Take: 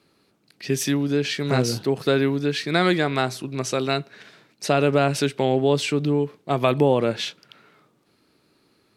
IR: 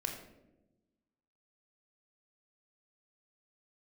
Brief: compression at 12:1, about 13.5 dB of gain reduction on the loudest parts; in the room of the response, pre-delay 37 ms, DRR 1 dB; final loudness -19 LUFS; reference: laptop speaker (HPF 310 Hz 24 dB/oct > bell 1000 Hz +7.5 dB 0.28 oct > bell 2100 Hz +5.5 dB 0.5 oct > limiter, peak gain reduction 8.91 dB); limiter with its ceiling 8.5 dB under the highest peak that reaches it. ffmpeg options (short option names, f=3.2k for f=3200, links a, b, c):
-filter_complex "[0:a]acompressor=threshold=-27dB:ratio=12,alimiter=limit=-22.5dB:level=0:latency=1,asplit=2[a][b];[1:a]atrim=start_sample=2205,adelay=37[c];[b][c]afir=irnorm=-1:irlink=0,volume=-2.5dB[d];[a][d]amix=inputs=2:normalize=0,highpass=f=310:w=0.5412,highpass=f=310:w=1.3066,equalizer=f=1k:t=o:w=0.28:g=7.5,equalizer=f=2.1k:t=o:w=0.5:g=5.5,volume=17dB,alimiter=limit=-10.5dB:level=0:latency=1"